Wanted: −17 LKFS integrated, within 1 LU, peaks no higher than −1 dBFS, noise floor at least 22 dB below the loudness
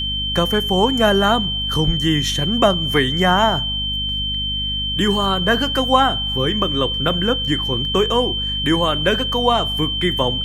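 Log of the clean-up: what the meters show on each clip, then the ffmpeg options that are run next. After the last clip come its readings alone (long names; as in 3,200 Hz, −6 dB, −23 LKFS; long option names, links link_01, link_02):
mains hum 50 Hz; hum harmonics up to 250 Hz; level of the hum −26 dBFS; interfering tone 3,100 Hz; level of the tone −21 dBFS; integrated loudness −17.5 LKFS; sample peak −1.5 dBFS; target loudness −17.0 LKFS
→ -af "bandreject=frequency=50:width_type=h:width=6,bandreject=frequency=100:width_type=h:width=6,bandreject=frequency=150:width_type=h:width=6,bandreject=frequency=200:width_type=h:width=6,bandreject=frequency=250:width_type=h:width=6"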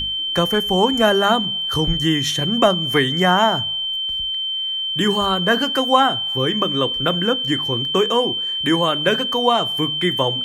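mains hum none found; interfering tone 3,100 Hz; level of the tone −21 dBFS
→ -af "bandreject=frequency=3100:width=30"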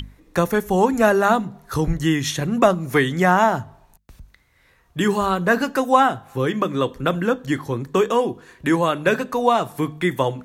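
interfering tone none found; integrated loudness −20.0 LKFS; sample peak −2.0 dBFS; target loudness −17.0 LKFS
→ -af "volume=3dB,alimiter=limit=-1dB:level=0:latency=1"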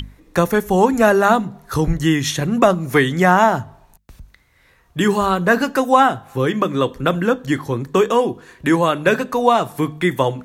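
integrated loudness −17.5 LKFS; sample peak −1.0 dBFS; background noise floor −55 dBFS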